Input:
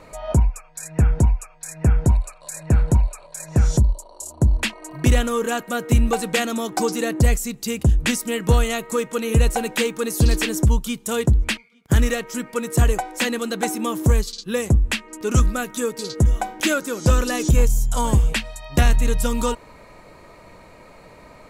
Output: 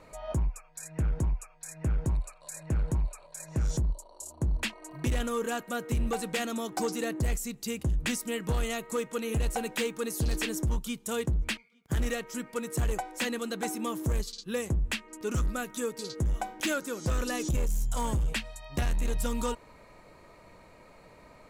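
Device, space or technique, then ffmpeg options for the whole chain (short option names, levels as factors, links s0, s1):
limiter into clipper: -af "alimiter=limit=0.282:level=0:latency=1:release=12,asoftclip=type=hard:threshold=0.178,volume=0.376"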